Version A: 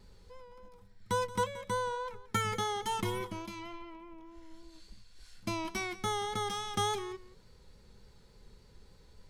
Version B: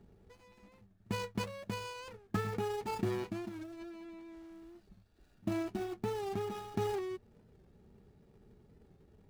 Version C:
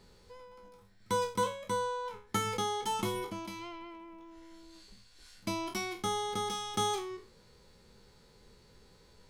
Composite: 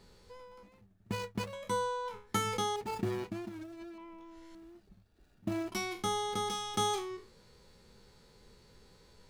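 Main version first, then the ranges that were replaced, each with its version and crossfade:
C
0.63–1.53 from B
2.76–3.98 from B
4.55–5.72 from B
not used: A

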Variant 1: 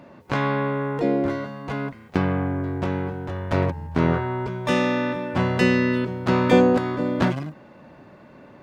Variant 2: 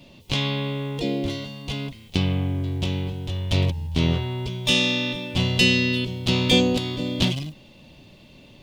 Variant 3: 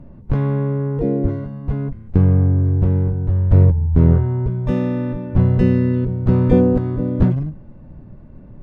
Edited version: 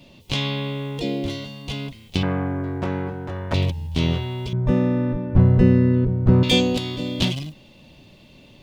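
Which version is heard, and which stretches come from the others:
2
2.23–3.54 from 1
4.53–6.43 from 3

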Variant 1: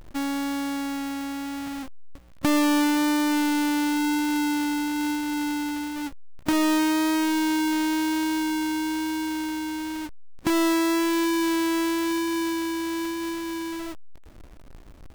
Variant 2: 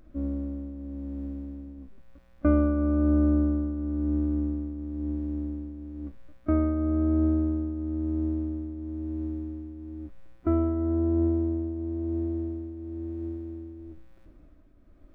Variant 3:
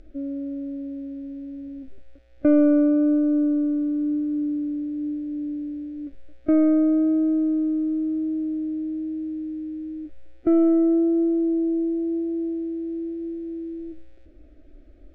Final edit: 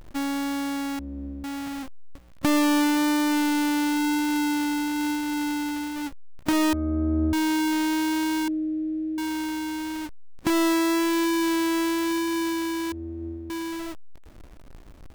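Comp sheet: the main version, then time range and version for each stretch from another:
1
0.99–1.44 from 2
6.73–7.33 from 2
8.48–9.18 from 3
12.92–13.5 from 2

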